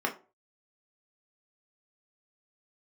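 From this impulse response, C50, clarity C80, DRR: 13.5 dB, 19.5 dB, 0.5 dB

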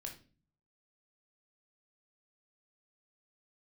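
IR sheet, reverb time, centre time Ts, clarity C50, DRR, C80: 0.35 s, 17 ms, 9.5 dB, 1.0 dB, 15.5 dB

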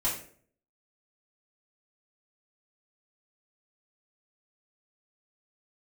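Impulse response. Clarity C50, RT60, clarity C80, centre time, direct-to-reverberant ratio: 6.0 dB, 0.50 s, 10.0 dB, 32 ms, -9.5 dB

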